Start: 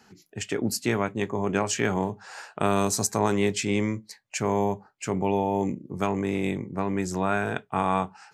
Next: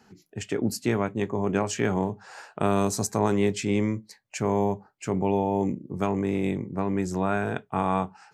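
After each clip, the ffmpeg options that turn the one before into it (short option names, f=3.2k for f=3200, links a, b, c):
-af "tiltshelf=f=970:g=3,volume=-1.5dB"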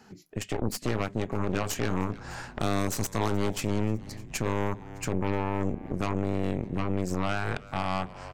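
-filter_complex "[0:a]aeval=exprs='0.376*(cos(1*acos(clip(val(0)/0.376,-1,1)))-cos(1*PI/2))+0.0841*(cos(8*acos(clip(val(0)/0.376,-1,1)))-cos(8*PI/2))':c=same,asplit=4[a][b][c][d];[b]adelay=303,afreqshift=-120,volume=-23.5dB[e];[c]adelay=606,afreqshift=-240,volume=-29.2dB[f];[d]adelay=909,afreqshift=-360,volume=-34.9dB[g];[a][e][f][g]amix=inputs=4:normalize=0,alimiter=limit=-20dB:level=0:latency=1:release=228,volume=3dB"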